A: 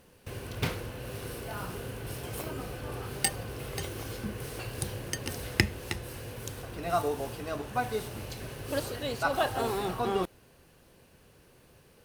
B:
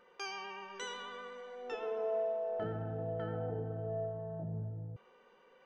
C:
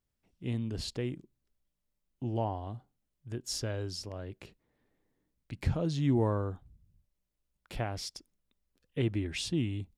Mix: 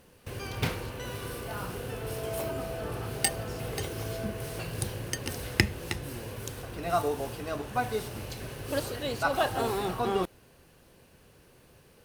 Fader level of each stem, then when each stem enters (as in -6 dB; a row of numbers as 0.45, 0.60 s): +1.0, -2.0, -17.0 dB; 0.00, 0.20, 0.00 s